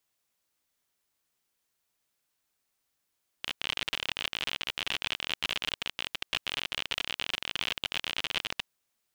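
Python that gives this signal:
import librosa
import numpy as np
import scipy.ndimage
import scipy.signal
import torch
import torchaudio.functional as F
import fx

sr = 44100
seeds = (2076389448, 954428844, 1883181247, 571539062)

y = fx.geiger_clicks(sr, seeds[0], length_s=5.19, per_s=54.0, level_db=-14.5)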